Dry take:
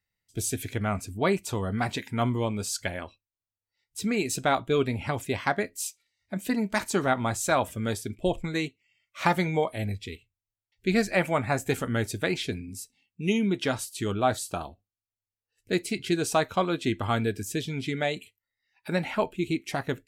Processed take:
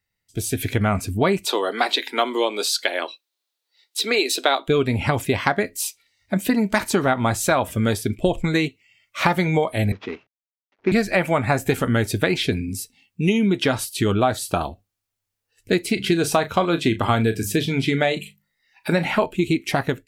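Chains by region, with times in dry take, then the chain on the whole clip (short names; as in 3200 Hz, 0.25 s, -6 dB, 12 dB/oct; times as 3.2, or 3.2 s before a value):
1.46–4.68 steep high-pass 310 Hz + bell 3900 Hz +11 dB 0.66 oct
9.92–10.92 CVSD 32 kbps + three-band isolator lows -23 dB, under 190 Hz, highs -19 dB, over 2200 Hz
15.93–19.26 notches 50/100/150/200 Hz + doubler 36 ms -13 dB
whole clip: compressor 4:1, threshold -28 dBFS; dynamic EQ 7200 Hz, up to -7 dB, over -51 dBFS, Q 1.4; AGC gain up to 7.5 dB; gain +4.5 dB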